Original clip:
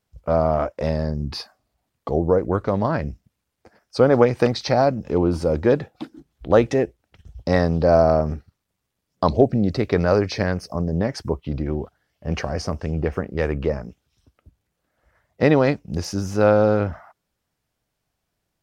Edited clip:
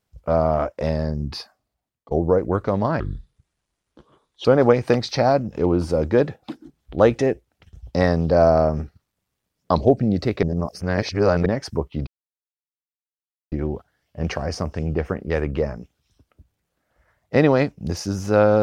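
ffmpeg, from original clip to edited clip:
ffmpeg -i in.wav -filter_complex "[0:a]asplit=7[link_01][link_02][link_03][link_04][link_05][link_06][link_07];[link_01]atrim=end=2.11,asetpts=PTS-STARTPTS,afade=type=out:start_time=1.23:duration=0.88:silence=0.0749894[link_08];[link_02]atrim=start=2.11:end=3.004,asetpts=PTS-STARTPTS,afade=type=in:duration=0.004:curve=hsin:silence=0.0749894[link_09];[link_03]atrim=start=3:end=3.97,asetpts=PTS-STARTPTS,asetrate=29547,aresample=44100,atrim=end_sample=63846,asetpts=PTS-STARTPTS[link_10];[link_04]atrim=start=3.966:end=9.952[link_11];[link_05]atrim=start=9.948:end=10.982,asetpts=PTS-STARTPTS,areverse[link_12];[link_06]atrim=start=10.978:end=11.59,asetpts=PTS-STARTPTS,afade=type=out:start_time=0.608:duration=0.004:curve=hsin,apad=pad_dur=1.45[link_13];[link_07]atrim=start=11.59,asetpts=PTS-STARTPTS,afade=type=in:duration=0.004:curve=hsin[link_14];[link_08][link_09]concat=n=2:v=0:a=1[link_15];[link_15][link_10]acrossfade=duration=0.004:curve1=hsin:curve2=hsin[link_16];[link_16][link_11]acrossfade=duration=0.004:curve1=hsin:curve2=hsin[link_17];[link_17][link_12]acrossfade=duration=0.004:curve1=hsin:curve2=hsin[link_18];[link_13][link_14]concat=n=2:v=0:a=1[link_19];[link_18][link_19]acrossfade=duration=0.004:curve1=hsin:curve2=hsin" out.wav

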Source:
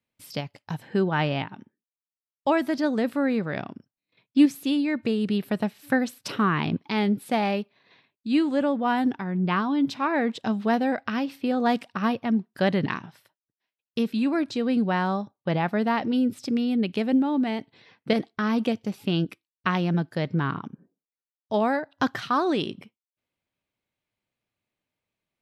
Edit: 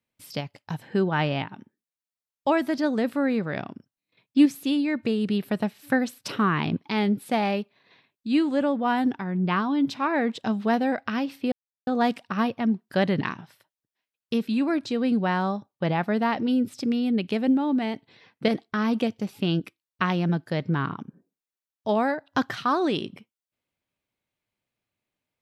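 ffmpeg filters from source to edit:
ffmpeg -i in.wav -filter_complex "[0:a]asplit=2[link_01][link_02];[link_01]atrim=end=11.52,asetpts=PTS-STARTPTS,afade=type=out:start_time=11.516:duration=0.004:curve=hsin,apad=pad_dur=0.35[link_03];[link_02]atrim=start=11.52,asetpts=PTS-STARTPTS,afade=type=in:duration=0.004:curve=hsin[link_04];[link_03][link_04]concat=n=2:v=0:a=1" out.wav

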